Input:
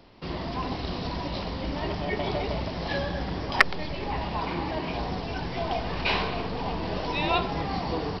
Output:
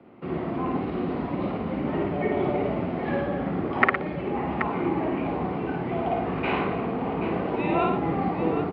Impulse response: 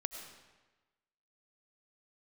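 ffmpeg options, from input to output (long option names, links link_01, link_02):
-filter_complex "[0:a]acrossover=split=260|840|1300[link_01][link_02][link_03][link_04];[link_03]acontrast=29[link_05];[link_01][link_02][link_05][link_04]amix=inputs=4:normalize=0,atempo=0.94,highpass=130,equalizer=frequency=230:width_type=q:width=4:gain=5,equalizer=frequency=360:width_type=q:width=4:gain=4,equalizer=frequency=630:width_type=q:width=4:gain=-4,equalizer=frequency=960:width_type=q:width=4:gain=-9,equalizer=frequency=1700:width_type=q:width=4:gain=-8,lowpass=frequency=2100:width=0.5412,lowpass=frequency=2100:width=1.3066,aecho=1:1:55|113|779:0.708|0.355|0.355,volume=2dB"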